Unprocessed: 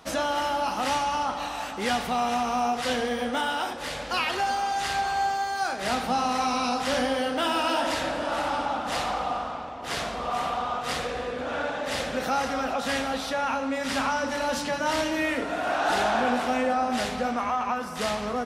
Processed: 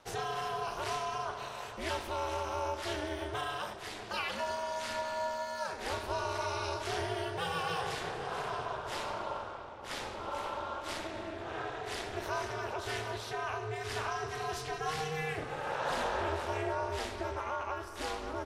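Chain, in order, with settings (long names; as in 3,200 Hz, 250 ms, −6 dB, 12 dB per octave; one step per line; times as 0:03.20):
ring modulation 160 Hz
level −6.5 dB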